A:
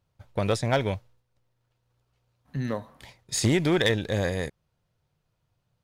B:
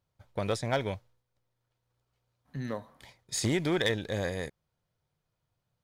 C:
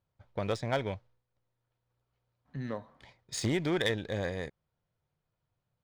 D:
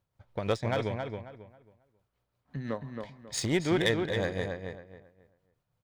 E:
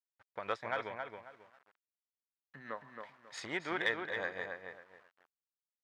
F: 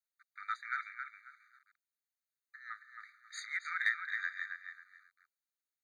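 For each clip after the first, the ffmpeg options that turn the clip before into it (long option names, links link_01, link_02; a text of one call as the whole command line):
ffmpeg -i in.wav -af "lowshelf=frequency=200:gain=-3.5,bandreject=frequency=2700:width=17,volume=-4.5dB" out.wav
ffmpeg -i in.wav -af "adynamicsmooth=sensitivity=6:basefreq=4700,volume=-1.5dB" out.wav
ffmpeg -i in.wav -filter_complex "[0:a]tremolo=f=5.9:d=0.52,asplit=2[link_01][link_02];[link_02]adelay=271,lowpass=frequency=2700:poles=1,volume=-5dB,asplit=2[link_03][link_04];[link_04]adelay=271,lowpass=frequency=2700:poles=1,volume=0.28,asplit=2[link_05][link_06];[link_06]adelay=271,lowpass=frequency=2700:poles=1,volume=0.28,asplit=2[link_07][link_08];[link_08]adelay=271,lowpass=frequency=2700:poles=1,volume=0.28[link_09];[link_03][link_05][link_07][link_09]amix=inputs=4:normalize=0[link_10];[link_01][link_10]amix=inputs=2:normalize=0,volume=4dB" out.wav
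ffmpeg -i in.wav -af "aeval=exprs='val(0)*gte(abs(val(0)),0.00188)':channel_layout=same,bandpass=frequency=1400:width_type=q:width=1.4:csg=0,volume=1dB" out.wav
ffmpeg -i in.wav -af "afftfilt=real='re*eq(mod(floor(b*sr/1024/1200),2),1)':imag='im*eq(mod(floor(b*sr/1024/1200),2),1)':win_size=1024:overlap=0.75,volume=2.5dB" out.wav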